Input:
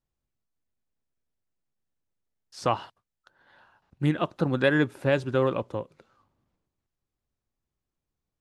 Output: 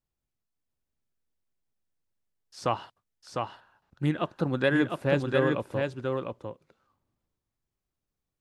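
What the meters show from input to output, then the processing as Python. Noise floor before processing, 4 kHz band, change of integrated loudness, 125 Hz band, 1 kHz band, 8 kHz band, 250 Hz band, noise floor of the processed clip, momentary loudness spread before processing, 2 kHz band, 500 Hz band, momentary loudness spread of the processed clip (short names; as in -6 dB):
under -85 dBFS, -1.0 dB, -2.5 dB, -1.5 dB, -1.0 dB, n/a, -0.5 dB, under -85 dBFS, 11 LU, -1.0 dB, -1.0 dB, 13 LU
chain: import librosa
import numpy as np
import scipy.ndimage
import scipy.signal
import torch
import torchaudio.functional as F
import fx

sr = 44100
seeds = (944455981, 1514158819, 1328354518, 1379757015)

y = x + 10.0 ** (-4.0 / 20.0) * np.pad(x, (int(703 * sr / 1000.0), 0))[:len(x)]
y = y * 10.0 ** (-2.5 / 20.0)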